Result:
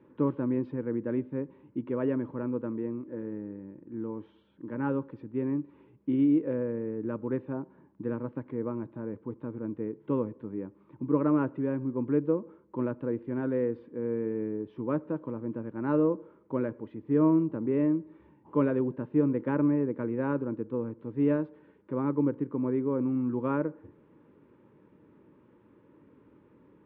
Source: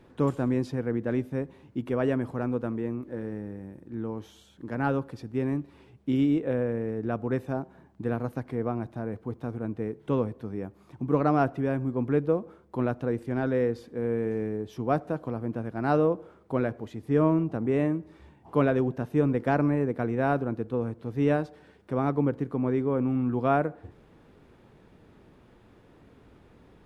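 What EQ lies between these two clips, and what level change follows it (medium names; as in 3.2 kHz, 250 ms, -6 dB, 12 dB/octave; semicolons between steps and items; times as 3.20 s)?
Butterworth band-stop 710 Hz, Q 2.6; cabinet simulation 160–3000 Hz, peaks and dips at 310 Hz +6 dB, 680 Hz +10 dB, 980 Hz +4 dB; tilt EQ -2 dB/octave; -7.0 dB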